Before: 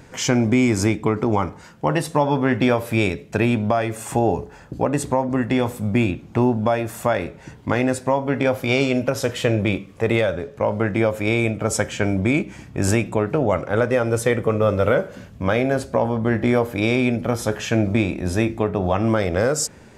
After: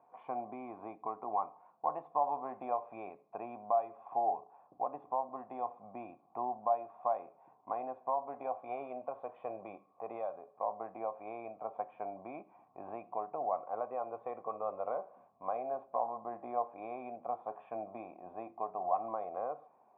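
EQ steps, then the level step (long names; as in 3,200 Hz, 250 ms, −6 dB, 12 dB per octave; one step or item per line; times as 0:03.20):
formant resonators in series a
high-pass filter 240 Hz 12 dB per octave
−2.0 dB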